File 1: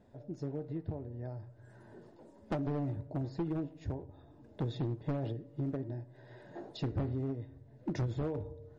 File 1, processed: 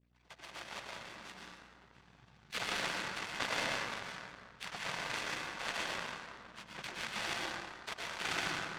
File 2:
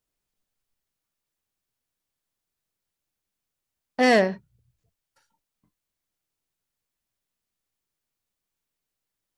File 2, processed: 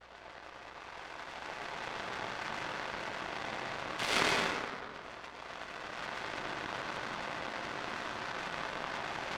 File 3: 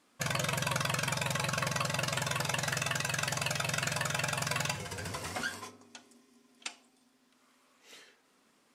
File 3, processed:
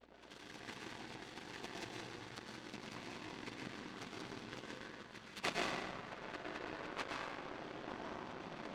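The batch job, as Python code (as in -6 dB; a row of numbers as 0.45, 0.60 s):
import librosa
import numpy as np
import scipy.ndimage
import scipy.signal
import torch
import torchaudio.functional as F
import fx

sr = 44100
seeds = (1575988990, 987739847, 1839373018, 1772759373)

y = x + 0.5 * 10.0 ** (-26.0 / 20.0) * np.diff(np.sign(x), prepend=np.sign(x[:1]))
y = fx.recorder_agc(y, sr, target_db=-14.5, rise_db_per_s=5.9, max_gain_db=30)
y = scipy.signal.sosfilt(scipy.signal.butter(2, 370.0, 'highpass', fs=sr, output='sos'), y)
y = 10.0 ** (-10.0 / 20.0) * np.tanh(y / 10.0 ** (-10.0 / 20.0))
y = fx.spec_gate(y, sr, threshold_db=-25, keep='weak')
y = fx.air_absorb(y, sr, metres=350.0)
y = fx.noise_vocoder(y, sr, seeds[0], bands=16)
y = fx.rev_plate(y, sr, seeds[1], rt60_s=2.1, hf_ratio=0.5, predelay_ms=95, drr_db=-3.0)
y = fx.add_hum(y, sr, base_hz=60, snr_db=28)
y = fx.power_curve(y, sr, exponent=2.0)
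y = fx.env_flatten(y, sr, amount_pct=50)
y = F.gain(torch.from_numpy(y), 17.5).numpy()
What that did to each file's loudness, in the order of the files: -0.5, -16.5, -14.0 LU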